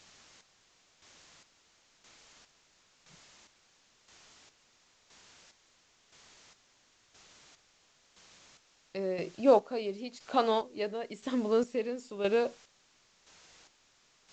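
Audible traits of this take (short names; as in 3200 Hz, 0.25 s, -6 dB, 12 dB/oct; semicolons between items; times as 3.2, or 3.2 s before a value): a quantiser's noise floor 10-bit, dither triangular; chopped level 0.98 Hz, depth 65%, duty 40%; µ-law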